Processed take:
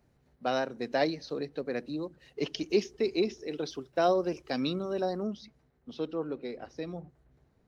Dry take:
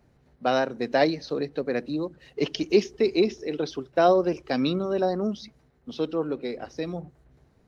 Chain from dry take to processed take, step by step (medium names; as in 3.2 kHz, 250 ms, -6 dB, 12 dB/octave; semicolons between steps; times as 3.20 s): treble shelf 5.5 kHz +4.5 dB, from 3.48 s +9 dB, from 5.23 s -4 dB; trim -6.5 dB